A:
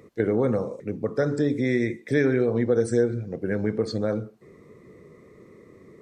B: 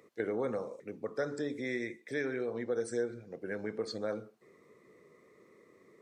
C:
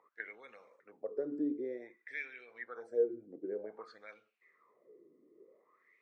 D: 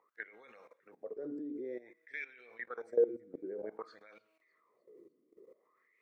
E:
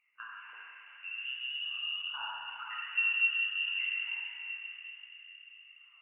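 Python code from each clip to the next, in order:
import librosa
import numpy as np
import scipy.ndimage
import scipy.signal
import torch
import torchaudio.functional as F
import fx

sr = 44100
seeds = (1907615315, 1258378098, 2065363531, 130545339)

y1 = fx.highpass(x, sr, hz=600.0, slope=6)
y1 = fx.rider(y1, sr, range_db=10, speed_s=2.0)
y1 = y1 * librosa.db_to_amplitude(-7.0)
y2 = fx.wah_lfo(y1, sr, hz=0.53, low_hz=290.0, high_hz=2700.0, q=5.9)
y2 = y2 * librosa.db_to_amplitude(6.0)
y3 = fx.comb_fb(y2, sr, f0_hz=160.0, decay_s=1.7, harmonics='all', damping=0.0, mix_pct=40)
y3 = fx.level_steps(y3, sr, step_db=17)
y3 = fx.echo_wet_highpass(y3, sr, ms=301, feedback_pct=51, hz=3400.0, wet_db=-22.0)
y3 = y3 * librosa.db_to_amplitude(10.5)
y4 = fx.rev_plate(y3, sr, seeds[0], rt60_s=4.6, hf_ratio=0.25, predelay_ms=0, drr_db=-8.0)
y4 = fx.freq_invert(y4, sr, carrier_hz=3200)
y4 = y4 * librosa.db_to_amplitude(-4.5)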